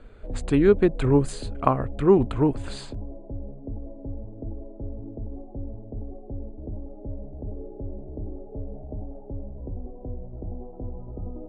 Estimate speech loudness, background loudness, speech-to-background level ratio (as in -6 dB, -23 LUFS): -22.0 LUFS, -38.5 LUFS, 16.5 dB